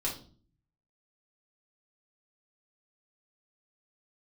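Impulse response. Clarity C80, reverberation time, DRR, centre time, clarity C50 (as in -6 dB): 14.0 dB, 0.45 s, -5.0 dB, 23 ms, 8.0 dB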